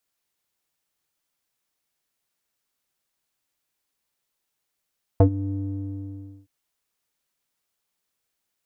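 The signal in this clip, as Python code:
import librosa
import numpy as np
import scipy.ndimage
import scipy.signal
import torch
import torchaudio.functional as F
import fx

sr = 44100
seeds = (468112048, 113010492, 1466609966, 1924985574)

y = fx.sub_voice(sr, note=43, wave='square', cutoff_hz=270.0, q=3.1, env_oct=1.5, env_s=0.07, attack_ms=2.8, decay_s=0.09, sustain_db=-17, release_s=0.96, note_s=0.31, slope=12)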